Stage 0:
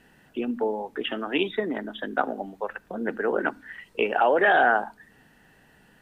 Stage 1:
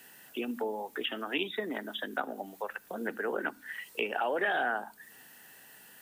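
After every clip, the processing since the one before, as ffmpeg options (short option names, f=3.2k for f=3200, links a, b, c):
-filter_complex "[0:a]aemphasis=mode=production:type=riaa,acrossover=split=290[a][b];[b]acompressor=threshold=-37dB:ratio=2[c];[a][c]amix=inputs=2:normalize=0"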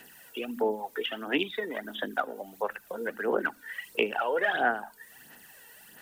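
-af "aphaser=in_gain=1:out_gain=1:delay=2.2:decay=0.58:speed=1.5:type=sinusoidal"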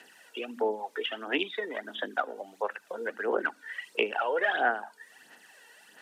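-af "highpass=310,lowpass=7.2k"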